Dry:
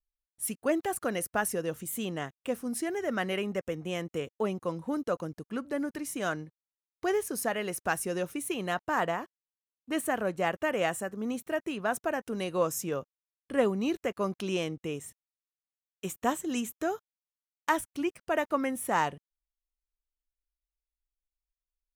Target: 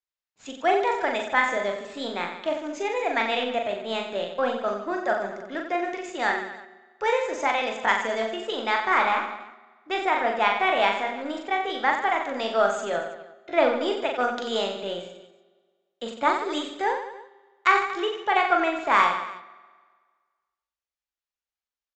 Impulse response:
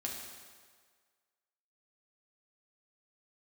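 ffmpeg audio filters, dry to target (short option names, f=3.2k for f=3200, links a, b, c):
-filter_complex "[0:a]asetrate=53981,aresample=44100,atempo=0.816958,highpass=f=940:p=1,highshelf=f=6.3k:g=9,asplit=2[a][b];[b]aeval=exprs='sgn(val(0))*max(abs(val(0))-0.0075,0)':c=same,volume=-6dB[c];[a][c]amix=inputs=2:normalize=0,aemphasis=mode=reproduction:type=75kf,aecho=1:1:40|90|152.5|230.6|328.3:0.631|0.398|0.251|0.158|0.1,asplit=2[d][e];[1:a]atrim=start_sample=2205,lowpass=4.6k[f];[e][f]afir=irnorm=-1:irlink=0,volume=-13.5dB[g];[d][g]amix=inputs=2:normalize=0,aresample=16000,aresample=44100,volume=6dB"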